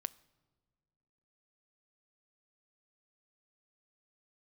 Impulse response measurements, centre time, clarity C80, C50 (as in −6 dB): 2 ms, 24.0 dB, 22.0 dB